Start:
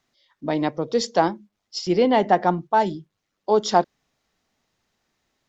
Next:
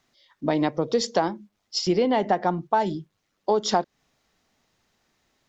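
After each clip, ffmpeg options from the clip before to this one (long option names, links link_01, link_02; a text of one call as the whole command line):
ffmpeg -i in.wav -af "acompressor=threshold=-22dB:ratio=5,volume=3.5dB" out.wav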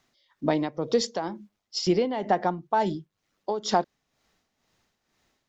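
ffmpeg -i in.wav -af "tremolo=f=2.1:d=0.63" out.wav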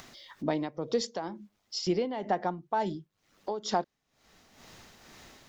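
ffmpeg -i in.wav -af "acompressor=mode=upward:threshold=-27dB:ratio=2.5,volume=-5.5dB" out.wav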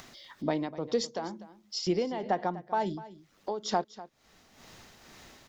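ffmpeg -i in.wav -af "aecho=1:1:247:0.141" out.wav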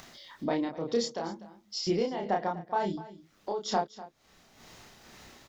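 ffmpeg -i in.wav -filter_complex "[0:a]asplit=2[link_01][link_02];[link_02]adelay=30,volume=-2.5dB[link_03];[link_01][link_03]amix=inputs=2:normalize=0,volume=-1.5dB" out.wav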